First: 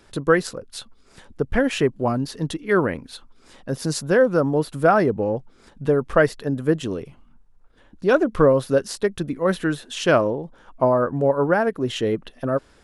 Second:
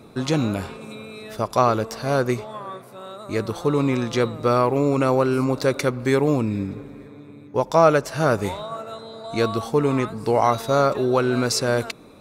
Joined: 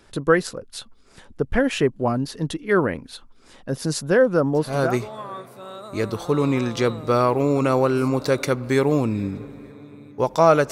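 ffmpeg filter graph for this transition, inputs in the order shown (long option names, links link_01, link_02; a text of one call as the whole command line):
ffmpeg -i cue0.wav -i cue1.wav -filter_complex "[0:a]apad=whole_dur=10.71,atrim=end=10.71,atrim=end=4.99,asetpts=PTS-STARTPTS[link_01];[1:a]atrim=start=1.87:end=8.07,asetpts=PTS-STARTPTS[link_02];[link_01][link_02]acrossfade=duration=0.48:curve1=qsin:curve2=qsin" out.wav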